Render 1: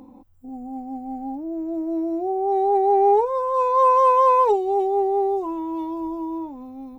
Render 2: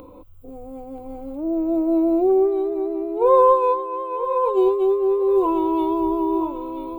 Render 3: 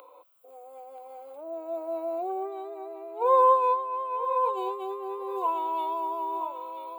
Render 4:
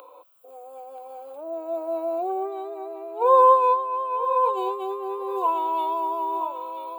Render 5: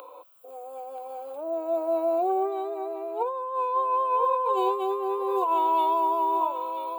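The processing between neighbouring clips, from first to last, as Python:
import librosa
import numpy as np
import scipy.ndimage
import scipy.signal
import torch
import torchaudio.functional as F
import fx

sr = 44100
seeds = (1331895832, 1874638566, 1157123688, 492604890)

y1 = fx.over_compress(x, sr, threshold_db=-23.0, ratio=-0.5)
y1 = fx.fixed_phaser(y1, sr, hz=1200.0, stages=8)
y1 = fx.echo_feedback(y1, sr, ms=981, feedback_pct=17, wet_db=-10.0)
y1 = F.gain(torch.from_numpy(y1), 8.0).numpy()
y2 = scipy.signal.sosfilt(scipy.signal.cheby2(4, 60, 170.0, 'highpass', fs=sr, output='sos'), y1)
y2 = F.gain(torch.from_numpy(y2), -2.5).numpy()
y3 = fx.notch(y2, sr, hz=2100.0, q=7.6)
y3 = F.gain(torch.from_numpy(y3), 4.5).numpy()
y4 = fx.over_compress(y3, sr, threshold_db=-24.0, ratio=-1.0)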